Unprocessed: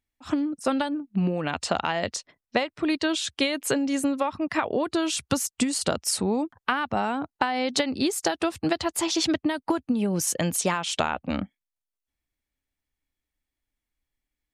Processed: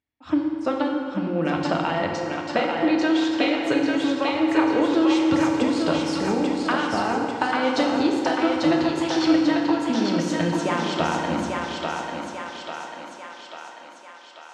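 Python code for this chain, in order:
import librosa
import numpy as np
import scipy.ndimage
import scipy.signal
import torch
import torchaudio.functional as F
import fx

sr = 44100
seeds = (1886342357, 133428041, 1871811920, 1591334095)

p1 = scipy.signal.sosfilt(scipy.signal.butter(2, 78.0, 'highpass', fs=sr, output='sos'), x)
p2 = fx.air_absorb(p1, sr, metres=170.0)
p3 = fx.hum_notches(p2, sr, base_hz=60, count=3)
p4 = p3 + fx.echo_thinned(p3, sr, ms=843, feedback_pct=60, hz=420.0, wet_db=-3, dry=0)
y = fx.rev_fdn(p4, sr, rt60_s=2.4, lf_ratio=1.05, hf_ratio=0.65, size_ms=19.0, drr_db=0.0)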